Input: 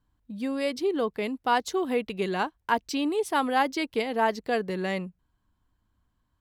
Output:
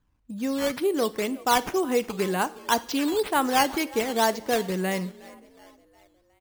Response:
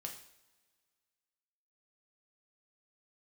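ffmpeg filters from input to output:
-filter_complex "[0:a]asplit=5[s0][s1][s2][s3][s4];[s1]adelay=364,afreqshift=41,volume=0.0891[s5];[s2]adelay=728,afreqshift=82,volume=0.0462[s6];[s3]adelay=1092,afreqshift=123,volume=0.024[s7];[s4]adelay=1456,afreqshift=164,volume=0.0126[s8];[s0][s5][s6][s7][s8]amix=inputs=5:normalize=0,acrusher=samples=8:mix=1:aa=0.000001:lfo=1:lforange=8:lforate=2,asplit=2[s9][s10];[1:a]atrim=start_sample=2205[s11];[s10][s11]afir=irnorm=-1:irlink=0,volume=0.473[s12];[s9][s12]amix=inputs=2:normalize=0"

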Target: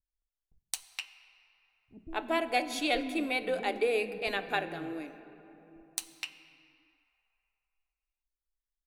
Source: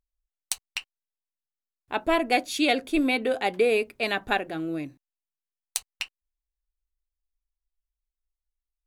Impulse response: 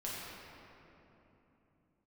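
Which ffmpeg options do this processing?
-filter_complex "[0:a]acrossover=split=250[s0][s1];[s1]adelay=220[s2];[s0][s2]amix=inputs=2:normalize=0,asplit=2[s3][s4];[1:a]atrim=start_sample=2205[s5];[s4][s5]afir=irnorm=-1:irlink=0,volume=0.266[s6];[s3][s6]amix=inputs=2:normalize=0,volume=0.447"

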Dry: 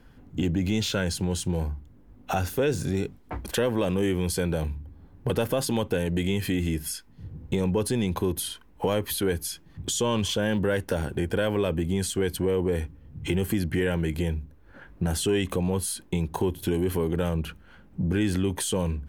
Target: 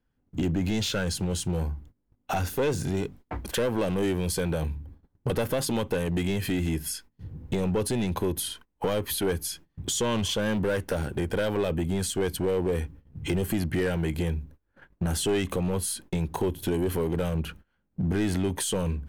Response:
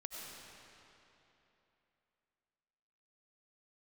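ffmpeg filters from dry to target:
-af "agate=range=0.0708:threshold=0.00562:ratio=16:detection=peak,aeval=exprs='clip(val(0),-1,0.075)':c=same"

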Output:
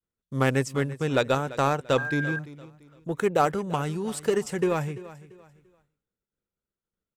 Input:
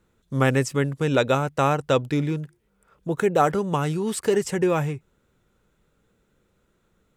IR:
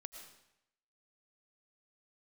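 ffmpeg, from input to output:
-filter_complex "[0:a]aeval=exprs='0.531*(cos(1*acos(clip(val(0)/0.531,-1,1)))-cos(1*PI/2))+0.0106*(cos(5*acos(clip(val(0)/0.531,-1,1)))-cos(5*PI/2))+0.0299*(cos(7*acos(clip(val(0)/0.531,-1,1)))-cos(7*PI/2))':c=same,asplit=2[s0][s1];[s1]aecho=0:1:341|682|1023:0.141|0.0438|0.0136[s2];[s0][s2]amix=inputs=2:normalize=0,asettb=1/sr,asplit=3[s3][s4][s5];[s3]atrim=end=1.984[s6];[s4]atrim=start=1.98:end=2.39,asetpts=PTS-STARTPTS,afade=t=in:d=0.004:c=qsin,afade=t=out:st=0.406:d=0.004:c=qsin,aeval=exprs='val(0)+0.0501*sin(2*PI*1600*n/s)':c=same[s7];[s5]atrim=start=2.386[s8];[s6][s7]acrossfade=d=0.004:c1=hsin:c2=qsin[s9];[s9][s8]acrossfade=d=0.004:c1=qsin:c2=hsin,agate=range=0.0224:threshold=0.00158:ratio=3:detection=peak,volume=0.75"

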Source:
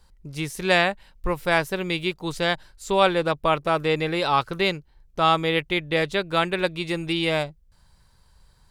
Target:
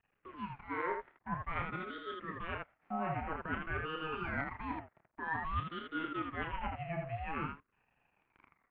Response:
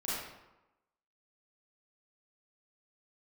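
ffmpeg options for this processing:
-filter_complex "[0:a]afftfilt=real='re*pow(10,13/40*sin(2*PI*(0.78*log(max(b,1)*sr/1024/100)/log(2)-(-0.26)*(pts-256)/sr)))':imag='im*pow(10,13/40*sin(2*PI*(0.78*log(max(b,1)*sr/1024/100)/log(2)-(-0.26)*(pts-256)/sr)))':win_size=1024:overlap=0.75,areverse,acompressor=threshold=0.0447:ratio=12,areverse,acrusher=bits=8:dc=4:mix=0:aa=0.000001,highpass=f=280:t=q:w=0.5412,highpass=f=280:t=q:w=1.307,lowpass=f=2000:t=q:w=0.5176,lowpass=f=2000:t=q:w=0.7071,lowpass=f=2000:t=q:w=1.932,afreqshift=74,asplit=2[s0][s1];[s1]aecho=0:1:30|80:0.501|0.596[s2];[s0][s2]amix=inputs=2:normalize=0,aeval=exprs='val(0)*sin(2*PI*560*n/s+560*0.55/0.5*sin(2*PI*0.5*n/s))':c=same,volume=0.596"

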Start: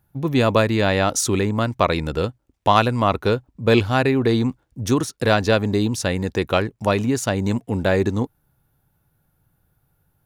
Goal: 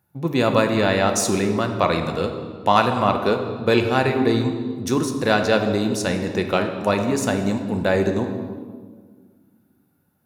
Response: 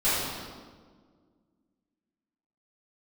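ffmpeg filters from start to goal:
-filter_complex "[0:a]highpass=120,bandreject=f=3200:w=16,asplit=2[s0][s1];[1:a]atrim=start_sample=2205[s2];[s1][s2]afir=irnorm=-1:irlink=0,volume=0.126[s3];[s0][s3]amix=inputs=2:normalize=0,volume=0.794"

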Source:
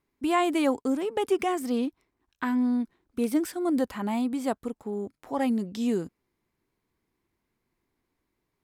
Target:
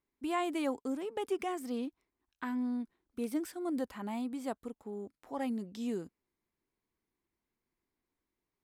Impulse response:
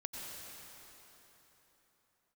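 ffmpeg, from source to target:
-af "equalizer=f=120:w=1.9:g=-4.5,volume=0.355"

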